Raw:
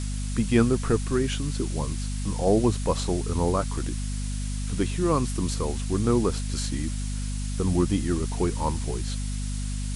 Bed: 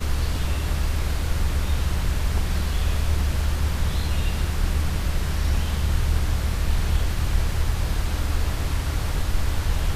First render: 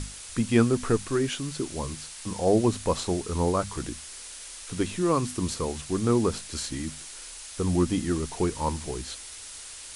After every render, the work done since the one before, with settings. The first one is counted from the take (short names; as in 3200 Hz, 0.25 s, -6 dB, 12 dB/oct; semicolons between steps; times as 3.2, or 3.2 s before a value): notches 50/100/150/200/250 Hz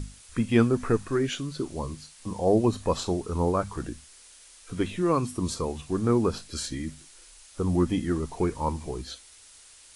noise print and reduce 10 dB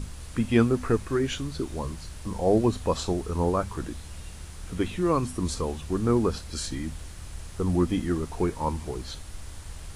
add bed -17.5 dB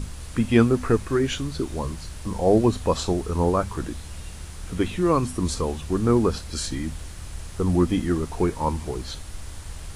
gain +3.5 dB